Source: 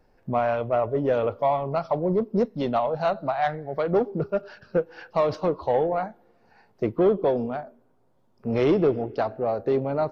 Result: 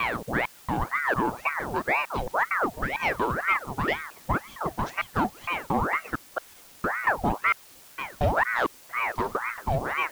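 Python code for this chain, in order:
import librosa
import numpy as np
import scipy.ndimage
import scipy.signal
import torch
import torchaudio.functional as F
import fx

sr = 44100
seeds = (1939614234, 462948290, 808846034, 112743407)

y = fx.block_reorder(x, sr, ms=228.0, group=3)
y = fx.quant_dither(y, sr, seeds[0], bits=8, dither='triangular')
y = fx.ring_lfo(y, sr, carrier_hz=1000.0, swing_pct=75, hz=2.0)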